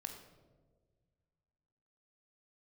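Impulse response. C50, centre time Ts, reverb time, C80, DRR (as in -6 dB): 7.0 dB, 26 ms, 1.6 s, 8.5 dB, 4.0 dB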